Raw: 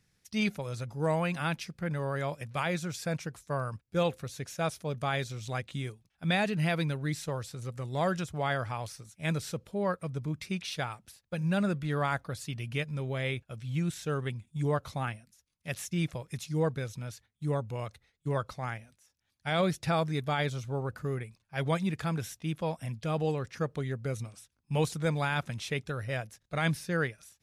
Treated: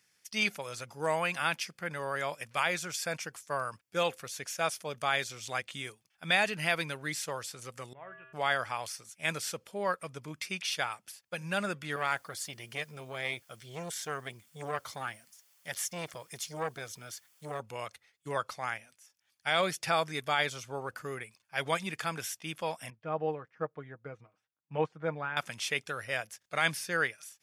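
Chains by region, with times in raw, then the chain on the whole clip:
7.93–8.33 s: Chebyshev low-pass 2.8 kHz, order 5 + feedback comb 130 Hz, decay 1.3 s, harmonics odd, mix 90%
11.96–17.60 s: band-stop 2.6 kHz, Q 6.8 + word length cut 12-bit, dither triangular + transformer saturation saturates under 660 Hz
22.90–25.37 s: low-pass 1.3 kHz + comb 6.4 ms, depth 49% + upward expansion, over -47 dBFS
whole clip: high-pass 1.2 kHz 6 dB/octave; band-stop 3.9 kHz, Q 8.6; trim +6 dB

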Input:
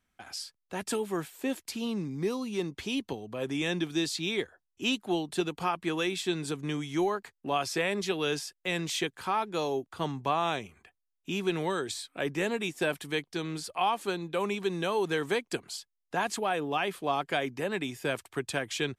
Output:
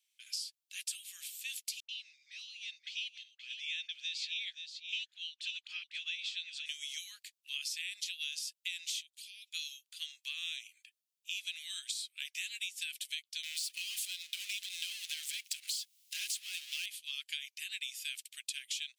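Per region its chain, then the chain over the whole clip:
1.80–6.66 s: distance through air 170 m + phase dispersion highs, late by 88 ms, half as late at 640 Hz + delay 525 ms -10.5 dB
9.01–9.53 s: inverse Chebyshev high-pass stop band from 1 kHz, stop band 50 dB + compression 16:1, threshold -49 dBFS
13.43–16.86 s: compression, threshold -29 dBFS + power-law waveshaper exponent 0.5
whole clip: steep high-pass 2.6 kHz 36 dB/octave; compression 12:1, threshold -40 dBFS; trim +5 dB

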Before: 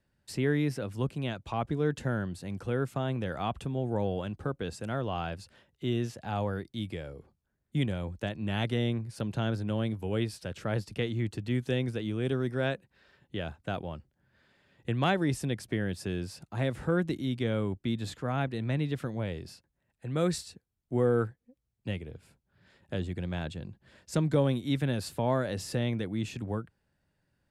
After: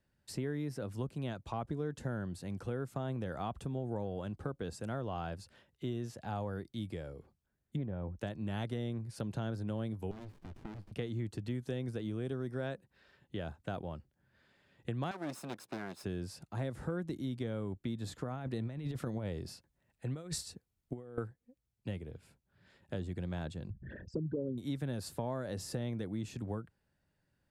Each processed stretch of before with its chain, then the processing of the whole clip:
7.76–8.18 s: low-pass 1.3 kHz + loudspeaker Doppler distortion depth 0.1 ms
10.11–10.92 s: low-pass 3.9 kHz + compression 3:1, threshold -38 dBFS + sliding maximum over 65 samples
15.11–16.04 s: comb filter that takes the minimum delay 0.77 ms + high-pass 320 Hz + treble shelf 6.4 kHz -5.5 dB
18.18–21.18 s: compressor with a negative ratio -33 dBFS, ratio -0.5 + band-stop 1.6 kHz, Q 28
23.70–24.58 s: resonances exaggerated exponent 3 + upward compressor, threshold -27 dBFS + distance through air 380 m
whole clip: dynamic bell 2.6 kHz, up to -7 dB, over -54 dBFS, Q 1.2; compression, threshold -30 dBFS; trim -3 dB

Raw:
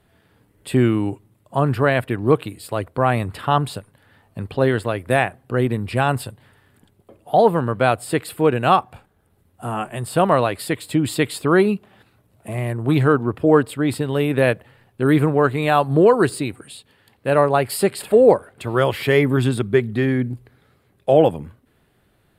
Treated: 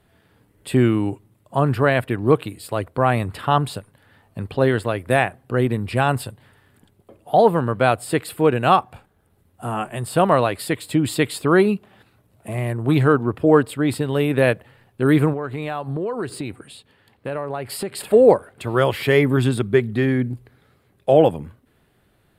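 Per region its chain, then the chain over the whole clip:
15.33–17.95 s: treble shelf 4.9 kHz -6.5 dB + compression 5:1, threshold -23 dBFS
whole clip: none

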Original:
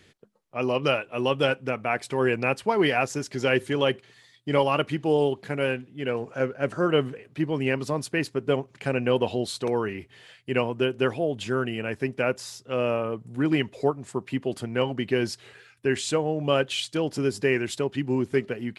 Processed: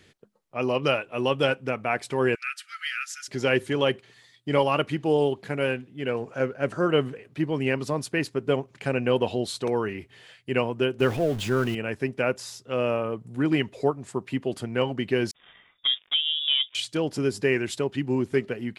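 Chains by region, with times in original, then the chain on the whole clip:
2.35–3.28 s: comb 5.4 ms, depth 42% + compression 1.5:1, threshold -28 dBFS + brick-wall FIR high-pass 1.2 kHz
11.00–11.75 s: jump at every zero crossing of -34.5 dBFS + bass shelf 110 Hz +8.5 dB + tape noise reduction on one side only decoder only
15.31–16.75 s: dead-time distortion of 0.15 ms + low-pass that closes with the level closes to 770 Hz, closed at -22.5 dBFS + frequency inversion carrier 3.6 kHz
whole clip: none

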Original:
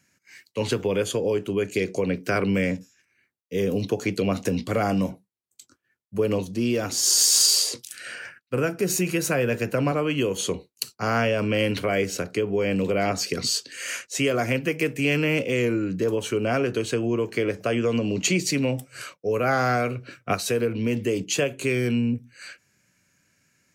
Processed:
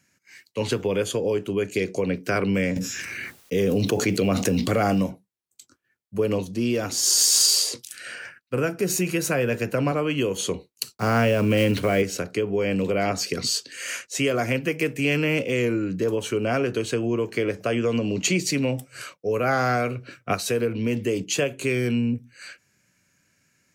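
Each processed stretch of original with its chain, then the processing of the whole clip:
2.76–5.03 s: block-companded coder 7-bit + band-stop 990 Hz, Q 18 + level flattener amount 70%
10.97–12.03 s: block-companded coder 5-bit + bass shelf 430 Hz +5.5 dB
whole clip: none

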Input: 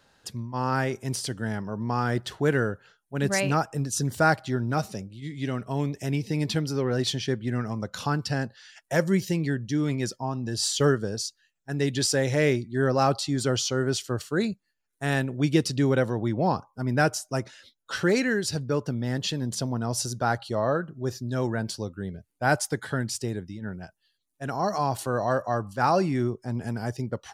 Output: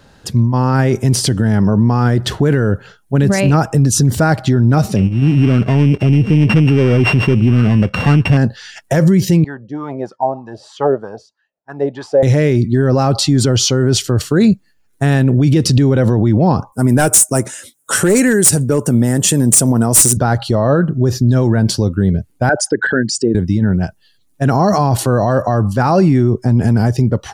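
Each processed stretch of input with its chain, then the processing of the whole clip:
4.96–8.37 s: sorted samples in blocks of 16 samples + low-pass 3 kHz + waveshaping leveller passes 1
9.44–12.23 s: dynamic bell 820 Hz, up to +7 dB, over -45 dBFS, Q 2.3 + wah-wah 3.2 Hz 550–1100 Hz, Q 4.5
16.72–20.17 s: high-pass 260 Hz 6 dB/octave + resonant high shelf 6.2 kHz +13 dB, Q 3 + hard clipper -18.5 dBFS
22.49–23.35 s: resonances exaggerated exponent 2 + cabinet simulation 300–9100 Hz, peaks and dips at 1.6 kHz +9 dB, 2.8 kHz +8 dB, 5.7 kHz -4 dB
whole clip: level rider gain up to 4 dB; bass shelf 410 Hz +11 dB; loudness maximiser +14 dB; trim -3 dB

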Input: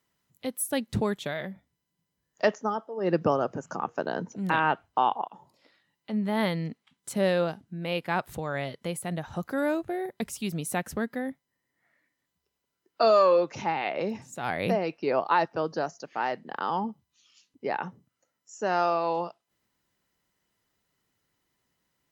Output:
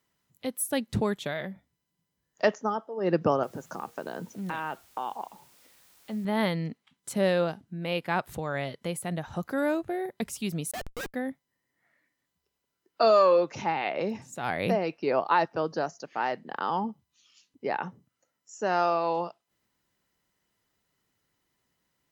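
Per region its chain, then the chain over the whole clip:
3.43–6.25 s: compression 2.5:1, threshold -29 dBFS + feedback comb 73 Hz, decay 0.18 s, harmonics odd, mix 30% + word length cut 10-bit, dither triangular
10.71–11.14 s: formants replaced by sine waves + peaking EQ 290 Hz -14 dB 1.6 oct + Schmitt trigger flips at -39.5 dBFS
whole clip: none

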